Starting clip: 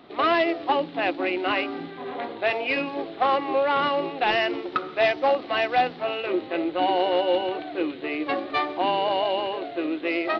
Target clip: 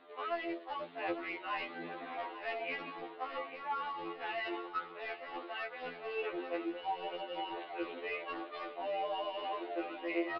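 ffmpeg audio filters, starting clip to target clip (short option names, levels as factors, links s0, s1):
-filter_complex "[0:a]acrossover=split=320 3500:gain=0.0794 1 0.0794[s0][s1][s2];[s0][s1][s2]amix=inputs=3:normalize=0,bandreject=f=60:t=h:w=6,bandreject=f=120:t=h:w=6,bandreject=f=180:t=h:w=6,bandreject=f=240:t=h:w=6,bandreject=f=300:t=h:w=6,bandreject=f=360:t=h:w=6,areverse,acompressor=threshold=0.0355:ratio=16,areverse,asoftclip=type=hard:threshold=0.0501,flanger=delay=6.6:depth=6.1:regen=40:speed=0.33:shape=sinusoidal,asplit=2[s3][s4];[s4]aecho=0:1:845|1690|2535|3380:0.251|0.098|0.0382|0.0149[s5];[s3][s5]amix=inputs=2:normalize=0,aresample=11025,aresample=44100,afftfilt=real='re*2*eq(mod(b,4),0)':imag='im*2*eq(mod(b,4),0)':win_size=2048:overlap=0.75,volume=1.19"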